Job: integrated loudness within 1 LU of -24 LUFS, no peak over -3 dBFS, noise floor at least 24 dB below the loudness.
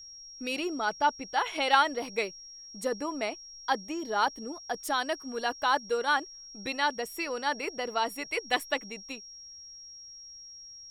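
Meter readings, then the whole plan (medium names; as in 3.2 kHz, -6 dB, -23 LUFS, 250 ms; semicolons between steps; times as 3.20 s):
steady tone 5.6 kHz; tone level -45 dBFS; loudness -30.5 LUFS; peak level -7.5 dBFS; loudness target -24.0 LUFS
-> band-stop 5.6 kHz, Q 30; trim +6.5 dB; peak limiter -3 dBFS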